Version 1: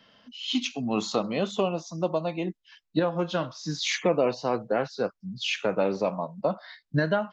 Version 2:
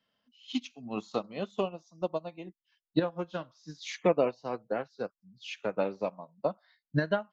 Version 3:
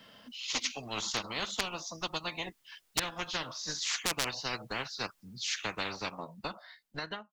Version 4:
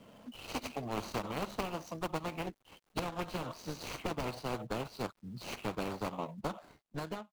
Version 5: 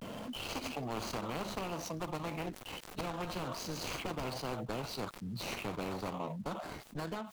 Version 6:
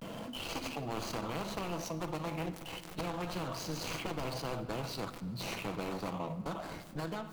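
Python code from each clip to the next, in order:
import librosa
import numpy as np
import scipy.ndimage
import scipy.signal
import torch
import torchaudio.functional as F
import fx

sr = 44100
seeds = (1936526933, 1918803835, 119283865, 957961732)

y1 = fx.upward_expand(x, sr, threshold_db=-33.0, expansion=2.5)
y2 = fx.fade_out_tail(y1, sr, length_s=1.9)
y2 = 10.0 ** (-18.0 / 20.0) * (np.abs((y2 / 10.0 ** (-18.0 / 20.0) + 3.0) % 4.0 - 2.0) - 1.0)
y2 = fx.spectral_comp(y2, sr, ratio=10.0)
y2 = F.gain(torch.from_numpy(y2), 8.5).numpy()
y3 = scipy.signal.medfilt(y2, 25)
y3 = F.gain(torch.from_numpy(y3), 4.5).numpy()
y4 = fx.vibrato(y3, sr, rate_hz=0.31, depth_cents=54.0)
y4 = fx.env_flatten(y4, sr, amount_pct=70)
y4 = F.gain(torch.from_numpy(y4), -4.5).numpy()
y5 = fx.room_shoebox(y4, sr, seeds[0], volume_m3=2900.0, walls='mixed', distance_m=0.68)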